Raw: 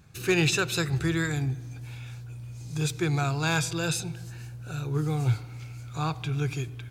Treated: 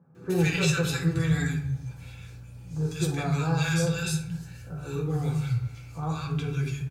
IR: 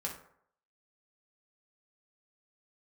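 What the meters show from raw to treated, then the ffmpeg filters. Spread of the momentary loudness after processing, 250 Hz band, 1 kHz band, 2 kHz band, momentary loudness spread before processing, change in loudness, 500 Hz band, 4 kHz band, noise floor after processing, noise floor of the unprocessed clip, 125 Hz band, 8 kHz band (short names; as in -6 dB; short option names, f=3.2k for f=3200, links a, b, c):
15 LU, +2.0 dB, -2.0 dB, -2.0 dB, 16 LU, 0.0 dB, 0.0 dB, -2.5 dB, -45 dBFS, -41 dBFS, +1.5 dB, -2.0 dB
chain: -filter_complex "[0:a]lowshelf=f=100:g=10.5,acrossover=split=160|1200[a][b][c];[c]adelay=150[d];[a]adelay=240[e];[e][b][d]amix=inputs=3:normalize=0[f];[1:a]atrim=start_sample=2205[g];[f][g]afir=irnorm=-1:irlink=0,volume=-1.5dB"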